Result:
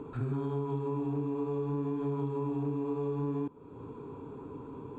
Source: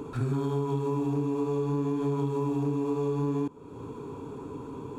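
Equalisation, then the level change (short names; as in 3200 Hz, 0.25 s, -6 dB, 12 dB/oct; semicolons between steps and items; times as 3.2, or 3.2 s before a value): running mean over 8 samples; -4.5 dB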